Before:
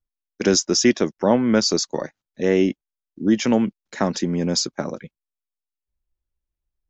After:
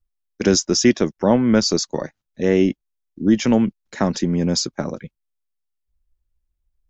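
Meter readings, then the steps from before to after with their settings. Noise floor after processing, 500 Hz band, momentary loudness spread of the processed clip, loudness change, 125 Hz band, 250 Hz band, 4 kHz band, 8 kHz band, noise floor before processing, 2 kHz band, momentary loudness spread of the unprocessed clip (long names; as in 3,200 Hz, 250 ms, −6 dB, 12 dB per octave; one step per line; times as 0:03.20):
−77 dBFS, +1.0 dB, 13 LU, +1.5 dB, +4.0 dB, +2.5 dB, 0.0 dB, can't be measured, below −85 dBFS, 0.0 dB, 13 LU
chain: low-shelf EQ 120 Hz +11.5 dB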